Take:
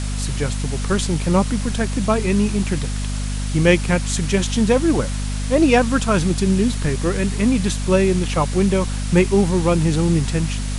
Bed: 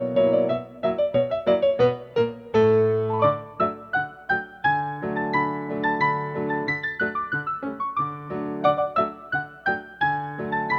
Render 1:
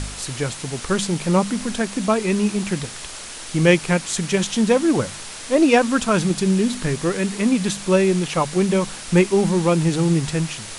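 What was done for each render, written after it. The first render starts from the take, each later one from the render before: de-hum 50 Hz, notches 5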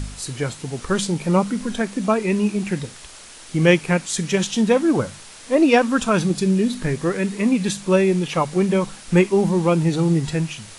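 noise print and reduce 7 dB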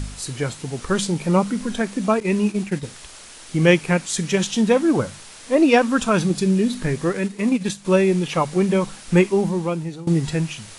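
2.2–2.83 expander -24 dBFS; 7.11–7.85 transient shaper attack -3 dB, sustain -9 dB; 9.22–10.07 fade out, to -19 dB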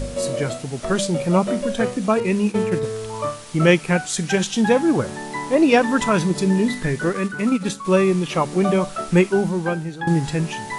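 add bed -6 dB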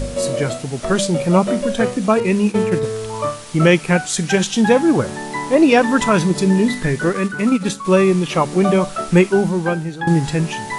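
gain +3.5 dB; limiter -2 dBFS, peak gain reduction 3 dB

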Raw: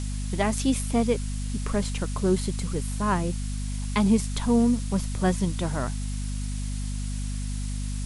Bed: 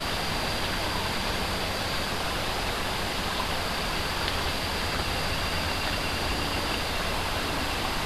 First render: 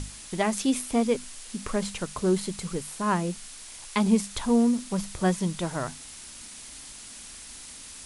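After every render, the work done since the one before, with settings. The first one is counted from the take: notches 50/100/150/200/250 Hz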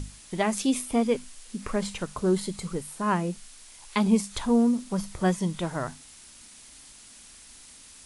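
noise print and reduce 6 dB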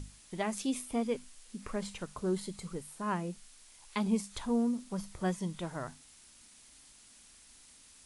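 gain -8.5 dB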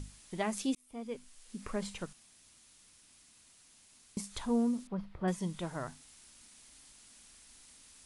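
0.75–1.59 fade in; 2.13–4.17 room tone; 4.87–5.28 air absorption 390 m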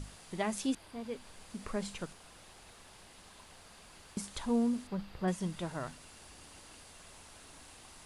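add bed -28 dB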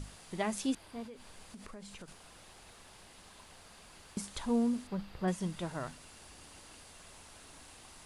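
1.05–2.08 compressor, threshold -45 dBFS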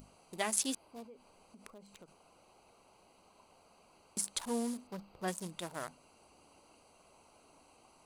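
Wiener smoothing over 25 samples; RIAA curve recording

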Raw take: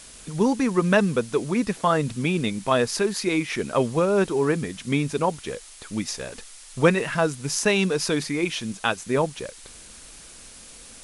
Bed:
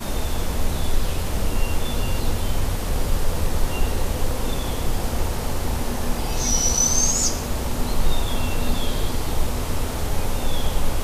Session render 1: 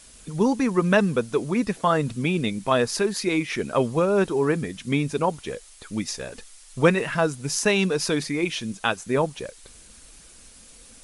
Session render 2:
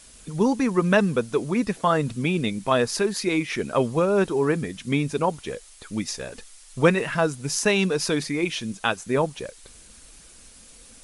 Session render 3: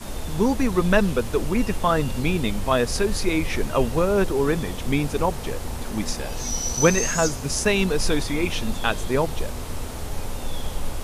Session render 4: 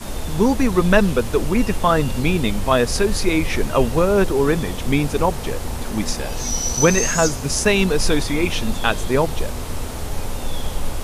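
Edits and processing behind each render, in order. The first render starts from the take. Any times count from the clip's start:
denoiser 6 dB, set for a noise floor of -45 dBFS
nothing audible
add bed -6.5 dB
gain +4 dB; limiter -2 dBFS, peak gain reduction 3 dB

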